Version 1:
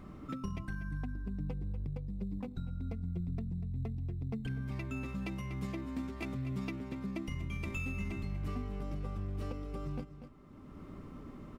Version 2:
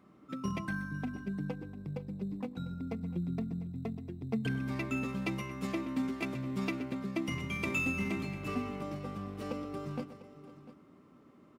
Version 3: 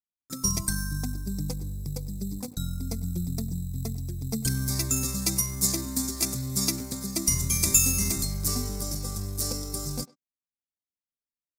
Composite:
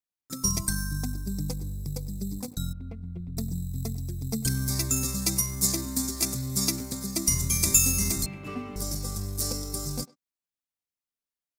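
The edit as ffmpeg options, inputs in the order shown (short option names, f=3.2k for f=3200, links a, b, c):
-filter_complex "[2:a]asplit=3[a][b][c];[a]atrim=end=2.732[d];[0:a]atrim=start=2.728:end=3.372[e];[b]atrim=start=3.368:end=8.262[f];[1:a]atrim=start=8.258:end=8.762[g];[c]atrim=start=8.758[h];[d][e]acrossfade=d=0.004:c1=hsin:c2=hsin[i];[i][f]acrossfade=d=0.004:c1=hsin:c2=hsin[j];[j][g]acrossfade=d=0.004:c1=hsin:c2=hsin[k];[k][h]acrossfade=d=0.004:c1=hsin:c2=hsin"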